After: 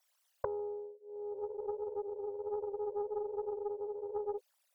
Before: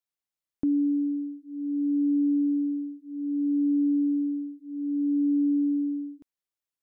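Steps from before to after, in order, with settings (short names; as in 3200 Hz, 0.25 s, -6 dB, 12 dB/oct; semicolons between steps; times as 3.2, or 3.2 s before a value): formant sharpening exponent 3; steep high-pass 360 Hz 96 dB/oct; wide varispeed 1.44×; spectral freeze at 1.38, 3.00 s; Doppler distortion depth 0.32 ms; gain +17.5 dB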